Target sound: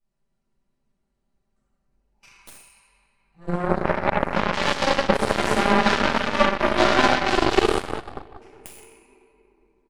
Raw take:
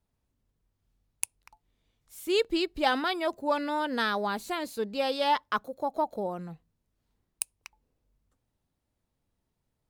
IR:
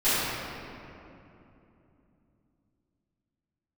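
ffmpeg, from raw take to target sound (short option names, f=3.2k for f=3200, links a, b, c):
-filter_complex "[0:a]areverse,bandreject=f=3.5k:w=10,aecho=1:1:5.1:0.82,acompressor=threshold=-32dB:ratio=5,aresample=22050,aresample=44100[a];[1:a]atrim=start_sample=2205,asetrate=36162,aresample=44100[b];[a][b]afir=irnorm=-1:irlink=0,aeval=exprs='0.708*(cos(1*acos(clip(val(0)/0.708,-1,1)))-cos(1*PI/2))+0.2*(cos(2*acos(clip(val(0)/0.708,-1,1)))-cos(2*PI/2))+0.0631*(cos(3*acos(clip(val(0)/0.708,-1,1)))-cos(3*PI/2))+0.0224*(cos(6*acos(clip(val(0)/0.708,-1,1)))-cos(6*PI/2))+0.0891*(cos(7*acos(clip(val(0)/0.708,-1,1)))-cos(7*PI/2))':c=same"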